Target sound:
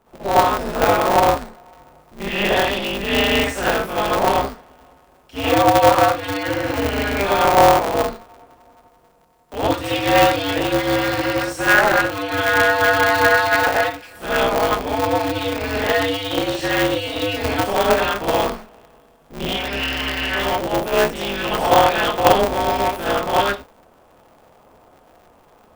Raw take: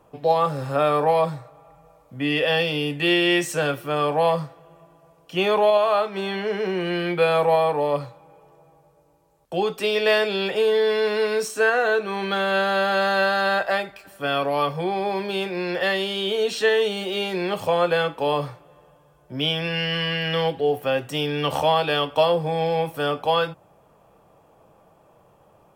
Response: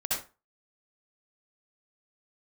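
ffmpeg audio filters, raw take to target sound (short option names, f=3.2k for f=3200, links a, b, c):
-filter_complex "[0:a]acrossover=split=2600[a][b];[b]acompressor=threshold=-35dB:ratio=4:attack=1:release=60[c];[a][c]amix=inputs=2:normalize=0[d];[1:a]atrim=start_sample=2205,atrim=end_sample=6174[e];[d][e]afir=irnorm=-1:irlink=0,aeval=exprs='val(0)*sgn(sin(2*PI*100*n/s))':c=same,volume=-2dB"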